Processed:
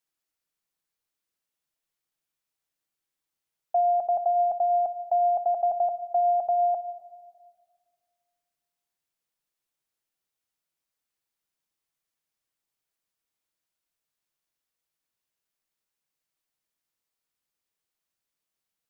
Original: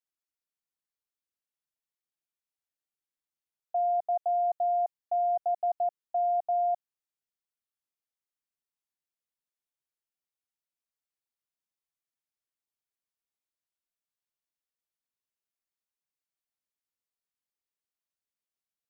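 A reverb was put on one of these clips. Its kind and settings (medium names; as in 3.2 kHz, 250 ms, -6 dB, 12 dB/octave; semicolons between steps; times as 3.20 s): simulated room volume 2400 m³, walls mixed, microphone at 0.62 m; trim +6.5 dB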